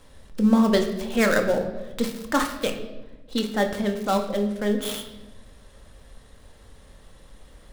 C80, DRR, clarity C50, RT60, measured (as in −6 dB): 10.5 dB, 3.5 dB, 8.5 dB, 1.1 s